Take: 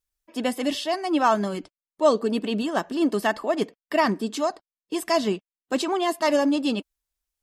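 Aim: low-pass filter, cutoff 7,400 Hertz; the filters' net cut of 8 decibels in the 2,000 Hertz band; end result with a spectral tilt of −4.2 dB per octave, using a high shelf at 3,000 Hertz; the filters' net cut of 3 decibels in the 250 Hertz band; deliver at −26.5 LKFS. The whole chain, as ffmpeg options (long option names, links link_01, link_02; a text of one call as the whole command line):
ffmpeg -i in.wav -af "lowpass=7400,equalizer=frequency=250:width_type=o:gain=-3.5,equalizer=frequency=2000:width_type=o:gain=-7.5,highshelf=frequency=3000:gain=-7.5,volume=0.5dB" out.wav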